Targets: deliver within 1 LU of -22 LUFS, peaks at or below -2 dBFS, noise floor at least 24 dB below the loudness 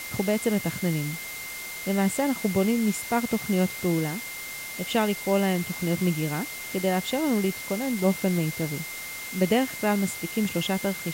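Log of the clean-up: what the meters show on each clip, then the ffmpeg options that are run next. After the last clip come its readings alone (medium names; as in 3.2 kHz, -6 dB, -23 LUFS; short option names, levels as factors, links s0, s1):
steady tone 2.1 kHz; tone level -37 dBFS; noise floor -37 dBFS; noise floor target -51 dBFS; loudness -26.5 LUFS; peak level -9.0 dBFS; loudness target -22.0 LUFS
-> -af "bandreject=f=2100:w=30"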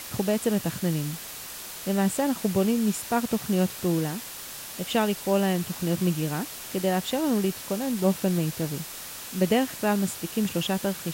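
steady tone not found; noise floor -39 dBFS; noise floor target -51 dBFS
-> -af "afftdn=nr=12:nf=-39"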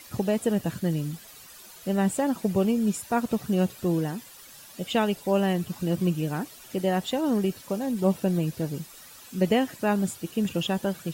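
noise floor -48 dBFS; noise floor target -51 dBFS
-> -af "afftdn=nr=6:nf=-48"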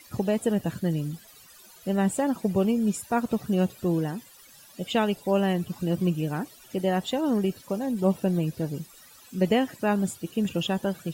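noise floor -52 dBFS; loudness -27.0 LUFS; peak level -10.0 dBFS; loudness target -22.0 LUFS
-> -af "volume=1.78"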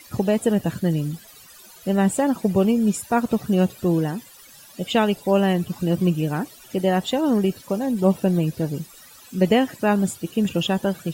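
loudness -22.0 LUFS; peak level -5.0 dBFS; noise floor -47 dBFS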